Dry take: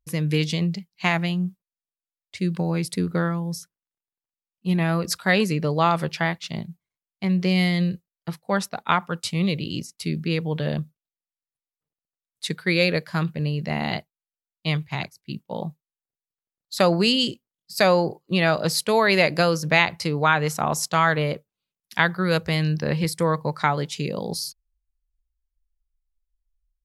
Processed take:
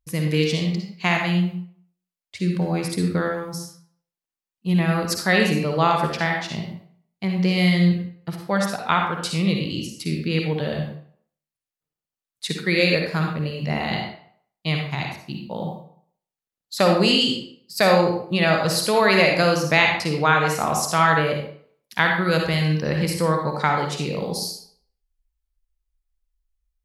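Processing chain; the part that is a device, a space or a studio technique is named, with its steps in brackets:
bathroom (convolution reverb RT60 0.60 s, pre-delay 48 ms, DRR 1.5 dB)

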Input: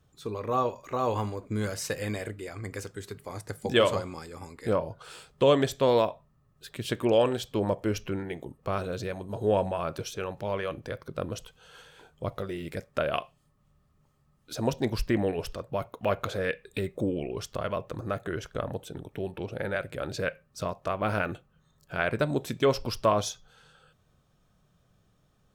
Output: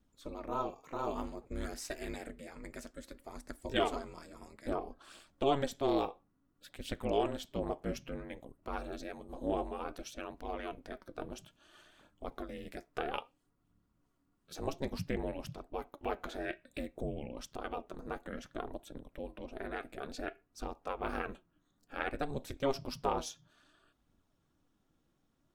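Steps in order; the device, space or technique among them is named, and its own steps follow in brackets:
alien voice (ring modulation 140 Hz; flanger 0.58 Hz, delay 0.2 ms, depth 6.4 ms, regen +67%)
level −2 dB

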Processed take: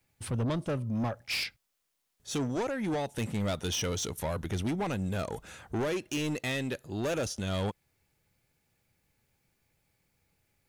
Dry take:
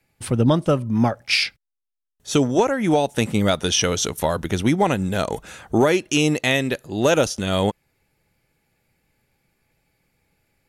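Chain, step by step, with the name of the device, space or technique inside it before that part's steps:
open-reel tape (soft clipping −19 dBFS, distortion −9 dB; parametric band 89 Hz +5 dB 1.1 octaves; white noise bed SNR 46 dB)
level −8.5 dB

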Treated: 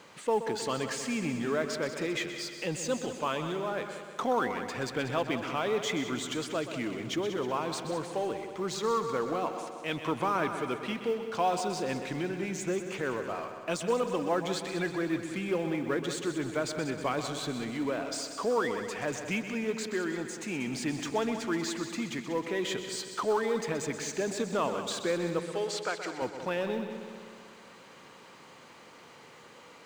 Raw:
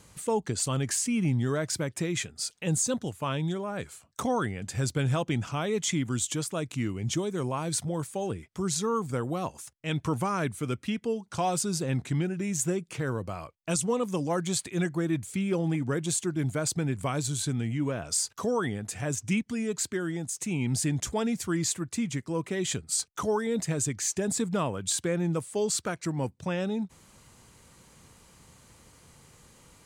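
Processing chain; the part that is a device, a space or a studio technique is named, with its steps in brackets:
phone line with mismatched companding (band-pass filter 330–3,500 Hz; mu-law and A-law mismatch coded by mu)
0:25.39–0:26.22: meter weighting curve A
echo machine with several playback heads 63 ms, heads second and third, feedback 61%, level −11 dB

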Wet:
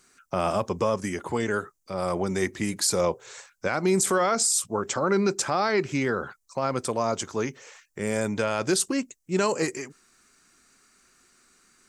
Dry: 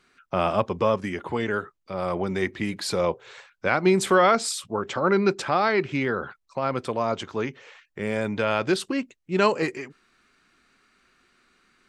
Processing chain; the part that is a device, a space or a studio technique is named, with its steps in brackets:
over-bright horn tweeter (high shelf with overshoot 4,800 Hz +12 dB, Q 1.5; brickwall limiter −13.5 dBFS, peak gain reduction 10 dB)

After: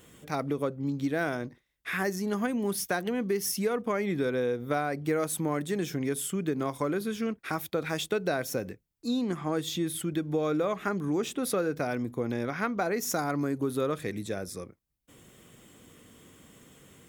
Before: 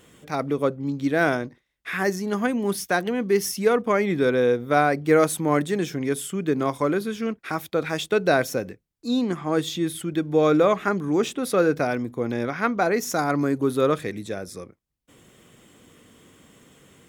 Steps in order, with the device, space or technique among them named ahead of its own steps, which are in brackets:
ASMR close-microphone chain (low-shelf EQ 160 Hz +3.5 dB; downward compressor 4 to 1, threshold −23 dBFS, peak gain reduction 9.5 dB; high-shelf EQ 10,000 Hz +7.5 dB)
level −3 dB

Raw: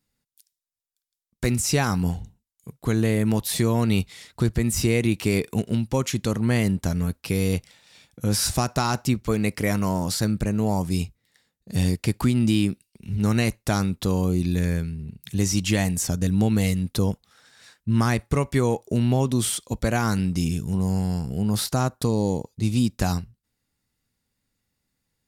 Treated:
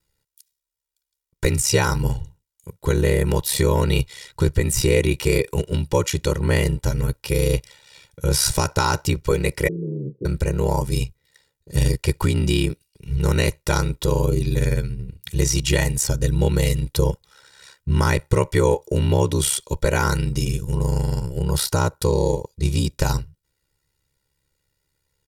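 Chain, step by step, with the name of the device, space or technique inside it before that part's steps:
0:09.68–0:10.25: Chebyshev band-pass filter 160–430 Hz, order 4
ring-modulated robot voice (ring modulation 34 Hz; comb filter 2.1 ms, depth 99%)
level +4 dB

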